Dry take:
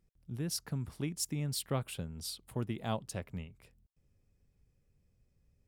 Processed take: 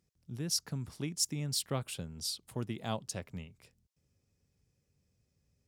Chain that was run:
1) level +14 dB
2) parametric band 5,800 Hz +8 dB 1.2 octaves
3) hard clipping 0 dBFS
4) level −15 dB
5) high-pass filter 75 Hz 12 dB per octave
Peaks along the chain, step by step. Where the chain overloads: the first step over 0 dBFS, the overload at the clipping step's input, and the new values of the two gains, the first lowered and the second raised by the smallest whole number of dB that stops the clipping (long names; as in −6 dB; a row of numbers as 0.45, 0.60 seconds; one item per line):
−6.5, −3.5, −3.5, −18.5, −18.5 dBFS
no step passes full scale